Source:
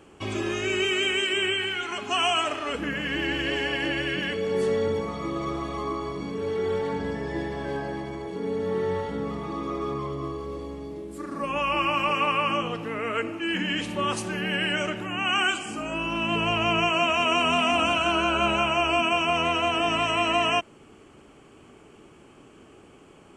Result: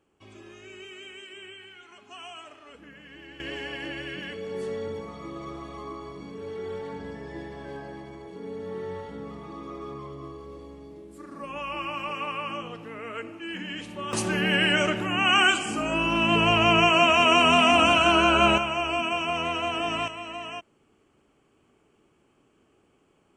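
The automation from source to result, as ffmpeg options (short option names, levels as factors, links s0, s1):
-af "asetnsamples=n=441:p=0,asendcmd='3.4 volume volume -8dB;14.13 volume volume 4dB;18.58 volume volume -4dB;20.08 volume volume -13.5dB',volume=0.112"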